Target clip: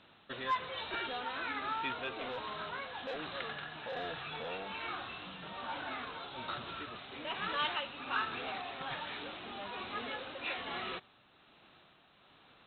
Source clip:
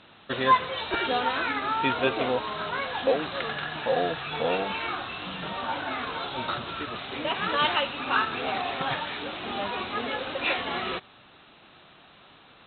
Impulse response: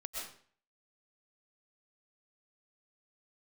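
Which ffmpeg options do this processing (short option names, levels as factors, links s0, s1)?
-filter_complex "[0:a]tremolo=f=1.2:d=0.36,acrossover=split=950[s0][s1];[s0]asoftclip=type=tanh:threshold=0.0237[s2];[s2][s1]amix=inputs=2:normalize=0,volume=0.398"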